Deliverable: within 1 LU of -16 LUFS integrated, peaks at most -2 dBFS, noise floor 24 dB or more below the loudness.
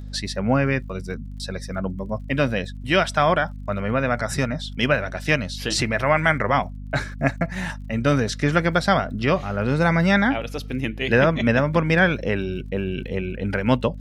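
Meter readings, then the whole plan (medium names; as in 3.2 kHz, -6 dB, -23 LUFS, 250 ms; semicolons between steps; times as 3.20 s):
tick rate 44 per s; hum 50 Hz; highest harmonic 250 Hz; hum level -32 dBFS; loudness -22.5 LUFS; peak level -5.0 dBFS; loudness target -16.0 LUFS
-> de-click; de-hum 50 Hz, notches 5; trim +6.5 dB; peak limiter -2 dBFS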